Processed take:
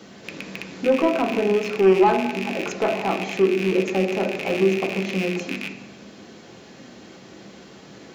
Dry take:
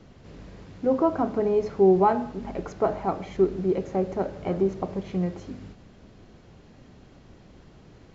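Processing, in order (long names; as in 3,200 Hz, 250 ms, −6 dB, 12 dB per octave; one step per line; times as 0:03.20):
loose part that buzzes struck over −39 dBFS, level −25 dBFS
high-pass filter 200 Hz 12 dB per octave
high-shelf EQ 2,500 Hz +10 dB
mains-hum notches 50/100/150/200/250/300/350/400 Hz
in parallel at +2 dB: downward compressor, threshold −35 dBFS, peak gain reduction 19 dB
on the sum: soft clipping −14 dBFS, distortion −16 dB
on a send at −3 dB: convolution reverb RT60 0.80 s, pre-delay 3 ms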